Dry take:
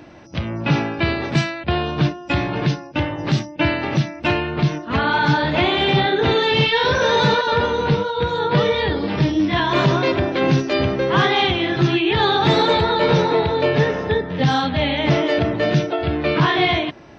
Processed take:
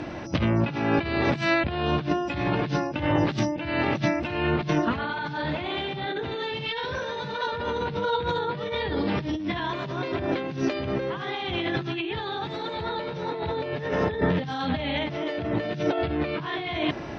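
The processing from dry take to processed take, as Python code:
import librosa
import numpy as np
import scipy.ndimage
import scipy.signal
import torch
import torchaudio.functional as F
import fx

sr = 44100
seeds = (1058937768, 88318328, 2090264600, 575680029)

y = fx.over_compress(x, sr, threshold_db=-28.0, ratio=-1.0)
y = fx.air_absorb(y, sr, metres=57.0)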